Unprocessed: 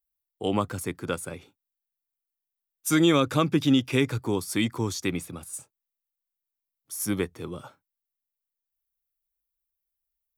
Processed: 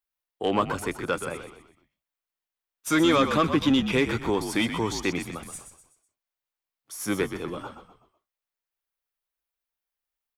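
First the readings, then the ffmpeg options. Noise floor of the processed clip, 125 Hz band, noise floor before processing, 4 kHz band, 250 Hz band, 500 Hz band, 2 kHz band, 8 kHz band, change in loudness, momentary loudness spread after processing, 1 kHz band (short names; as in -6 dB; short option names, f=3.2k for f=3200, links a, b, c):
under -85 dBFS, -4.0 dB, under -85 dBFS, +1.0 dB, 0.0 dB, +2.0 dB, +3.5 dB, -2.5 dB, +0.5 dB, 17 LU, +4.5 dB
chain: -filter_complex "[0:a]asplit=2[a][b];[b]highpass=f=720:p=1,volume=16dB,asoftclip=type=tanh:threshold=-8.5dB[c];[a][c]amix=inputs=2:normalize=0,lowpass=f=2.2k:p=1,volume=-6dB,asplit=5[d][e][f][g][h];[e]adelay=125,afreqshift=-56,volume=-9dB[i];[f]adelay=250,afreqshift=-112,volume=-17dB[j];[g]adelay=375,afreqshift=-168,volume=-24.9dB[k];[h]adelay=500,afreqshift=-224,volume=-32.9dB[l];[d][i][j][k][l]amix=inputs=5:normalize=0,volume=-2dB"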